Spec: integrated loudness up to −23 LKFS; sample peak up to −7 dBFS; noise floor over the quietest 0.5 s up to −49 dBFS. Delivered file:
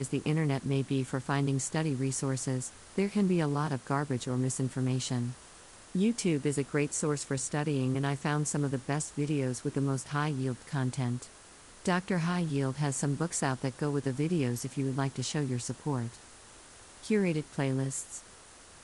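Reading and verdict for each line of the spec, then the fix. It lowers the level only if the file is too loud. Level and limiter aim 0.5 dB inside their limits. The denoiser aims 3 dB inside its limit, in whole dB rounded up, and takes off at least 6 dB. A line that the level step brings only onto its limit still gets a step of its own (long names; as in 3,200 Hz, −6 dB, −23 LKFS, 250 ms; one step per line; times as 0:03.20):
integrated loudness −31.5 LKFS: in spec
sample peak −14.0 dBFS: in spec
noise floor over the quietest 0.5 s −53 dBFS: in spec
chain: no processing needed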